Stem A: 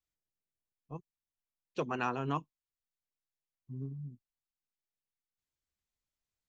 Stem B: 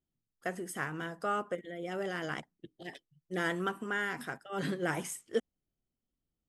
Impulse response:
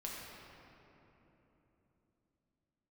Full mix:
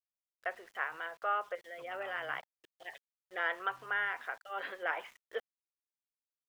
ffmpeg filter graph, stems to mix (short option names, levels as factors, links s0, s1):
-filter_complex "[0:a]tiltshelf=f=970:g=-6.5,volume=0.126[s0];[1:a]highpass=f=500:w=0.5412,highpass=f=500:w=1.3066,volume=1.19[s1];[s0][s1]amix=inputs=2:normalize=0,lowpass=f=2900:w=0.5412,lowpass=f=2900:w=1.3066,equalizer=f=330:t=o:w=1.3:g=-6.5,aeval=exprs='val(0)*gte(abs(val(0)),0.00141)':c=same"